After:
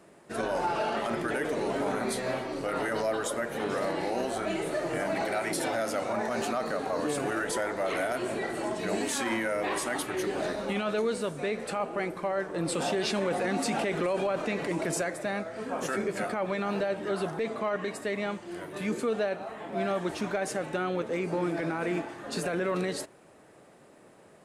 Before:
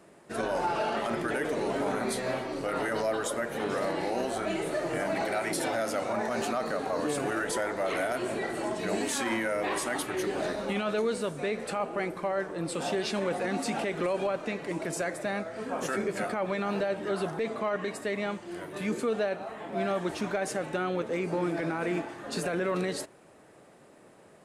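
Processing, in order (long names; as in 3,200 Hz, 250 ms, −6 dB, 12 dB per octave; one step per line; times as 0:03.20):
0:12.54–0:15.03: envelope flattener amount 50%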